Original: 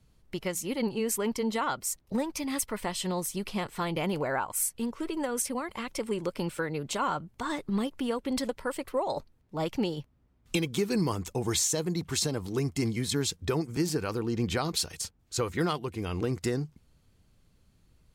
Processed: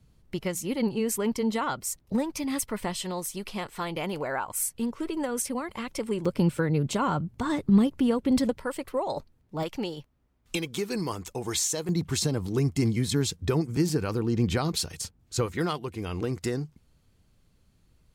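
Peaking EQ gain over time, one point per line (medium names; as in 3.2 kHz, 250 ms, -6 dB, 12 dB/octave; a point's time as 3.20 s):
peaking EQ 120 Hz 2.9 oct
+5 dB
from 3.03 s -3.5 dB
from 4.48 s +4 dB
from 6.25 s +13 dB
from 8.58 s +2.5 dB
from 9.63 s -5 dB
from 11.89 s +6 dB
from 15.46 s 0 dB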